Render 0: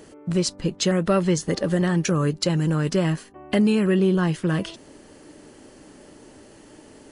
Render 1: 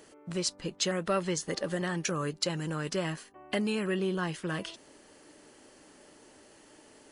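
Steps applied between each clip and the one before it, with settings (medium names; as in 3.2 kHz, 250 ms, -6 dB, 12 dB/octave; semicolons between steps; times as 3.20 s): bass shelf 380 Hz -11 dB; trim -4.5 dB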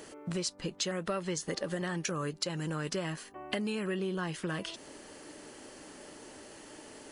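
compression 3:1, threshold -41 dBFS, peak gain reduction 12.5 dB; trim +6.5 dB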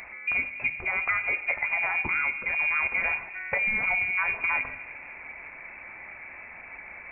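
reverberation RT60 1.3 s, pre-delay 6 ms, DRR 9 dB; frequency inversion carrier 2.6 kHz; trim +7 dB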